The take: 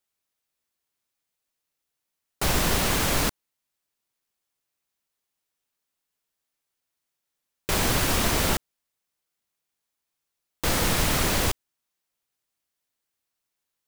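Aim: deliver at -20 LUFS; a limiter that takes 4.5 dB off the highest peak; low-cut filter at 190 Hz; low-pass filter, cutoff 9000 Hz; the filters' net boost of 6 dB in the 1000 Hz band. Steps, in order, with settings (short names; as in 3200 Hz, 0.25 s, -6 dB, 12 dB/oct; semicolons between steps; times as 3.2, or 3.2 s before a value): HPF 190 Hz; LPF 9000 Hz; bell 1000 Hz +7.5 dB; gain +5 dB; limiter -9.5 dBFS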